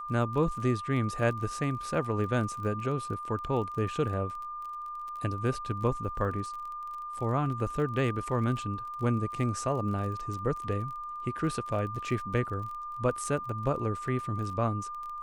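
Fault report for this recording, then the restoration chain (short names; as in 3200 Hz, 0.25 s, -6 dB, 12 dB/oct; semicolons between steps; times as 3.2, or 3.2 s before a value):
crackle 28/s -38 dBFS
tone 1200 Hz -36 dBFS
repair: de-click; notch 1200 Hz, Q 30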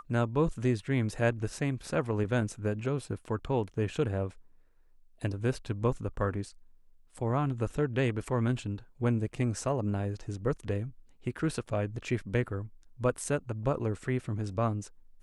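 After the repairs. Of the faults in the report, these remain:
none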